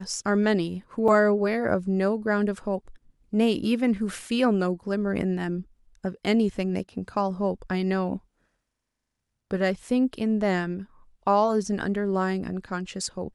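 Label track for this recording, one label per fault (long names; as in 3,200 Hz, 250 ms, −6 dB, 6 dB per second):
1.080000	1.080000	drop-out 2.4 ms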